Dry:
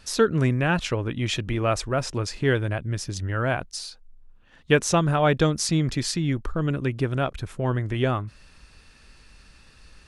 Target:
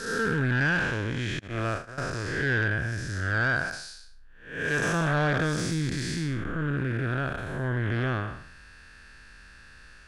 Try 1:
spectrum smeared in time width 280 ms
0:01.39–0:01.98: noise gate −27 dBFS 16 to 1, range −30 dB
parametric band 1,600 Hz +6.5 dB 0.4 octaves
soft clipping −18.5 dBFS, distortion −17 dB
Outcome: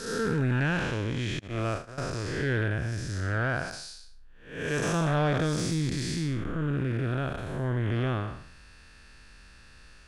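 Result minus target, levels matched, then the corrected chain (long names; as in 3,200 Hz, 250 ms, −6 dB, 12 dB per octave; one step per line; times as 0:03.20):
2,000 Hz band −5.0 dB
spectrum smeared in time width 280 ms
0:01.39–0:01.98: noise gate −27 dBFS 16 to 1, range −30 dB
parametric band 1,600 Hz +15.5 dB 0.4 octaves
soft clipping −18.5 dBFS, distortion −16 dB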